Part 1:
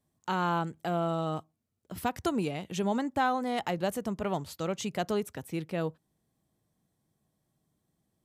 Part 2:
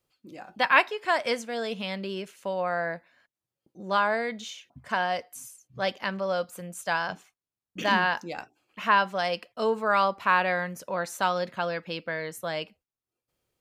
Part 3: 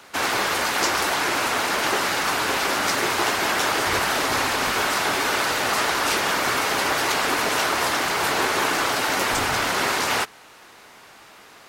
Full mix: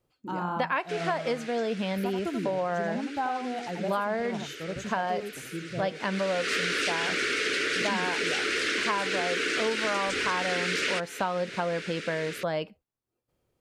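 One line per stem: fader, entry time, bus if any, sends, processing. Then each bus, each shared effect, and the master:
-2.5 dB, 0.00 s, no send, echo send -6 dB, high shelf 8200 Hz +11.5 dB; short-mantissa float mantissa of 4-bit; spectral expander 1.5:1
+1.5 dB, 0.00 s, no send, no echo send, tilt shelf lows +5.5 dB, about 1300 Hz
-1.0 dB, 0.75 s, no send, no echo send, EQ curve 130 Hz 0 dB, 450 Hz +15 dB, 860 Hz -24 dB, 1400 Hz +9 dB, 2400 Hz +14 dB, 9300 Hz +4 dB, 14000 Hz -20 dB; compressor 2:1, threshold -24 dBFS, peak gain reduction 8.5 dB; auto duck -22 dB, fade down 1.60 s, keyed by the first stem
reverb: off
echo: echo 84 ms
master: compressor 6:1, threshold -25 dBFS, peak gain reduction 12.5 dB

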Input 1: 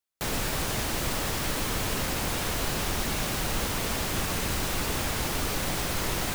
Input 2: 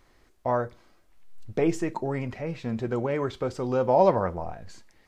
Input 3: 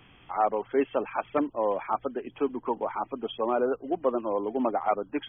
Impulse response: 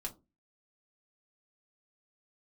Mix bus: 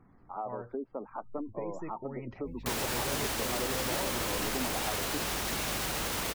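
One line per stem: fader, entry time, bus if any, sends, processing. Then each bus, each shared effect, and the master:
+1.5 dB, 2.45 s, no bus, no send, HPF 290 Hz 6 dB/oct; limiter -25.5 dBFS, peak gain reduction 7 dB; hum 50 Hz, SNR 16 dB
-4.5 dB, 0.00 s, bus A, no send, resonator 180 Hz, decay 0.61 s, harmonics odd, mix 50%
-7.0 dB, 0.00 s, bus A, no send, LPF 1300 Hz 24 dB/oct; bell 220 Hz +6.5 dB 0.81 oct
bus A: 0.0 dB, spectral gate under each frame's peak -30 dB strong; compressor 6:1, threshold -34 dBFS, peak gain reduction 11.5 dB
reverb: off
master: low shelf 68 Hz +6.5 dB

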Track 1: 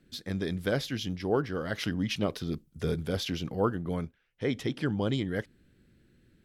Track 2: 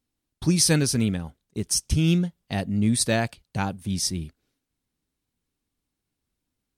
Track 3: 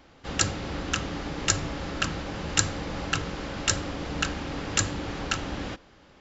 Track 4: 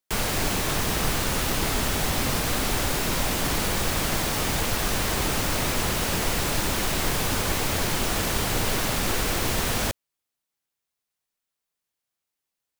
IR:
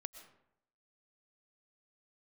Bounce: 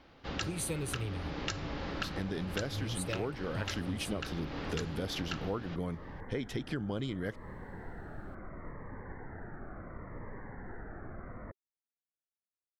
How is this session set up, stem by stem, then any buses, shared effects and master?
+2.0 dB, 1.90 s, no send, dry
-4.5 dB, 0.00 s, muted 1.44–2.6, no send, bell 86 Hz +5.5 dB 1.9 oct; fixed phaser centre 1100 Hz, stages 8
-4.0 dB, 0.00 s, no send, LPF 5200 Hz 24 dB/oct
-17.0 dB, 1.60 s, no send, steep low-pass 2000 Hz 96 dB/oct; cascading phaser falling 0.71 Hz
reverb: off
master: compressor 5:1, threshold -33 dBFS, peak gain reduction 13 dB

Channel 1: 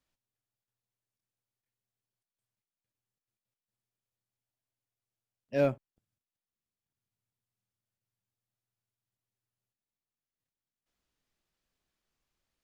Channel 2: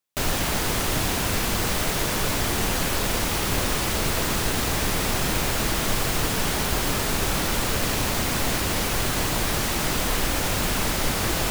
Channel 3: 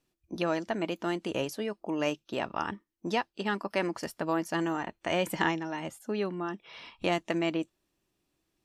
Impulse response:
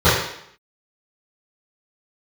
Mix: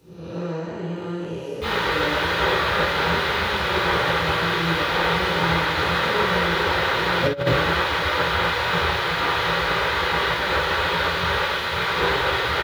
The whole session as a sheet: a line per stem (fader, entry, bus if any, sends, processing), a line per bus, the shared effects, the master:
+2.0 dB, 1.70 s, send -5.5 dB, compressor 2.5:1, threshold -40 dBFS, peak gain reduction 12 dB
-8.0 dB, 1.45 s, send -7 dB, HPF 69 Hz 24 dB/oct; spectral gate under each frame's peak -10 dB weak; EQ curve 2100 Hz 0 dB, 3600 Hz -2 dB, 6100 Hz -17 dB
-7.5 dB, 0.00 s, send -16 dB, time blur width 0.266 s; high shelf 5000 Hz +6 dB; three-band squash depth 70%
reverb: on, RT60 0.70 s, pre-delay 3 ms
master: negative-ratio compressor -17 dBFS, ratio -0.5

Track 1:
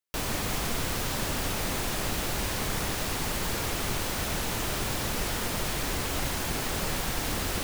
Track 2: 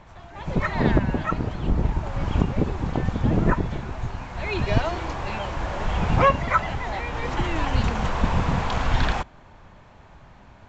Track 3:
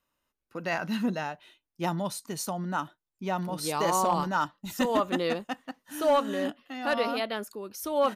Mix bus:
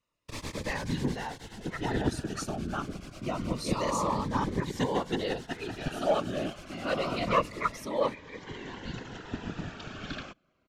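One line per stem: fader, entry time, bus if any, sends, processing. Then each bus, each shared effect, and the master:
+0.5 dB, 0.15 s, no send, beating tremolo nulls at 9.3 Hz; auto duck -14 dB, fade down 1.75 s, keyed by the third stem
-3.5 dB, 1.10 s, no send, HPF 160 Hz 12 dB/oct; bell 830 Hz -14 dB 0.35 oct; upward expander 1.5:1, over -44 dBFS
-1.5 dB, 0.00 s, no send, dry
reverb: off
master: LPF 6900 Hz 12 dB/oct; whisperiser; cascading phaser falling 0.27 Hz

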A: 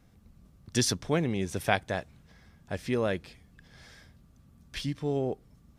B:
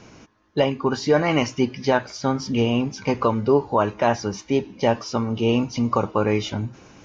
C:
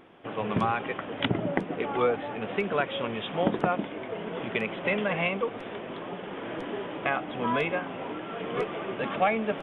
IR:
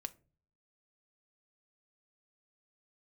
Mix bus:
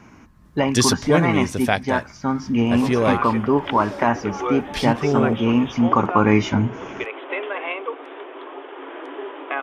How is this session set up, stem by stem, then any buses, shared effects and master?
+0.5 dB, 0.00 s, no send, dry
-3.0 dB, 0.00 s, no send, ten-band EQ 250 Hz +7 dB, 500 Hz -6 dB, 1000 Hz +6 dB, 2000 Hz +6 dB, 4000 Hz -10 dB; auto duck -7 dB, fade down 0.85 s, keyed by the first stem
-4.5 dB, 2.45 s, no send, rippled Chebyshev high-pass 270 Hz, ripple 6 dB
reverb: off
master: AGC gain up to 9 dB

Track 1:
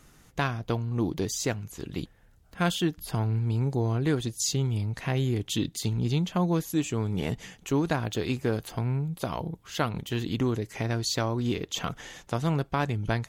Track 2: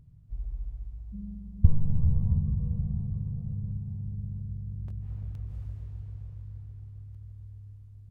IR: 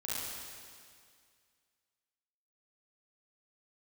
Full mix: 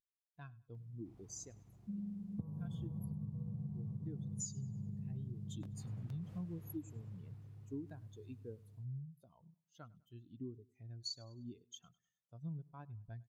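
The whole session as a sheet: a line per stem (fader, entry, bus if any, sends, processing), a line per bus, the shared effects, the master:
-6.5 dB, 0.00 s, no send, echo send -23.5 dB, pre-emphasis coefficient 0.8; spectral expander 2.5:1
-2.0 dB, 0.75 s, no send, no echo send, HPF 140 Hz 24 dB/oct; AGC gain up to 3 dB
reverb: off
echo: feedback echo 0.101 s, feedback 37%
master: compressor 12:1, threshold -39 dBFS, peak gain reduction 17.5 dB

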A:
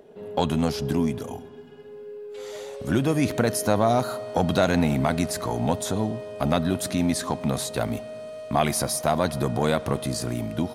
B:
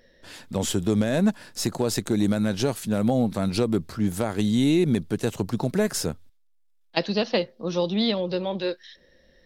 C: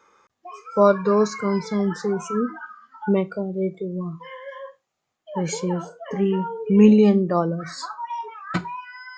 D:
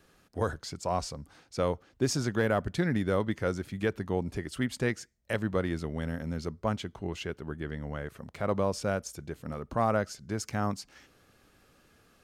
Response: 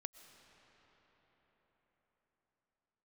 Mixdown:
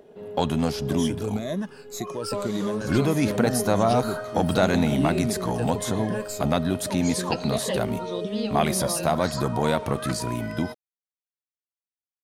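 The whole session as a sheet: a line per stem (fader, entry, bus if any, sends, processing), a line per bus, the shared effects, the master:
-0.5 dB, 0.00 s, no send, dry
-9.5 dB, 0.35 s, no send, moving spectral ripple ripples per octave 1.2, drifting -1.8 Hz, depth 16 dB
-2.0 dB, 1.55 s, no send, compressor, threshold -27 dBFS, peak gain reduction 17 dB
off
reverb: off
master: dry

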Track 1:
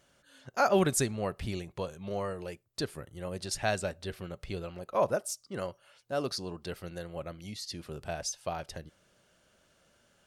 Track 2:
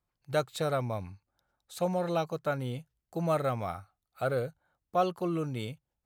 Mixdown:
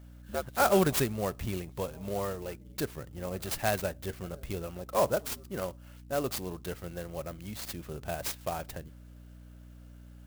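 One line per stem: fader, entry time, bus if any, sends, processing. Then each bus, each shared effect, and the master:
+1.0 dB, 0.00 s, no send, hum 60 Hz, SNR 16 dB
+2.0 dB, 0.00 s, no send, spectral gate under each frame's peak -30 dB strong; ring modulator 73 Hz; auto duck -22 dB, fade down 1.65 s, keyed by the first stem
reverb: off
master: clock jitter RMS 0.05 ms

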